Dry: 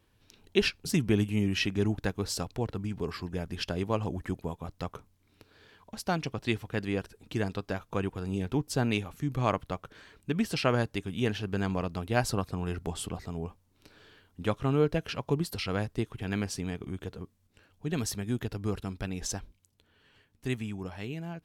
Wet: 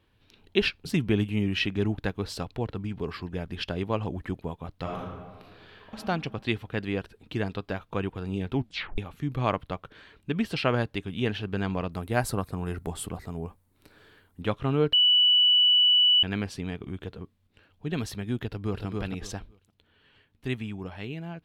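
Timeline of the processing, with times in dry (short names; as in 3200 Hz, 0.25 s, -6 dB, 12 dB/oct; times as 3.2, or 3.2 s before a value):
4.82–5.96 reverb throw, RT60 1.5 s, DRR -4 dB
8.55 tape stop 0.43 s
11.92–14.42 EQ curve 2000 Hz 0 dB, 2900 Hz -6 dB, 5600 Hz +1 dB, 8900 Hz +11 dB
14.93–16.23 bleep 2960 Hz -19.5 dBFS
18.46–18.86 echo throw 0.28 s, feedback 20%, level -2.5 dB
whole clip: resonant high shelf 4700 Hz -7.5 dB, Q 1.5; gain +1 dB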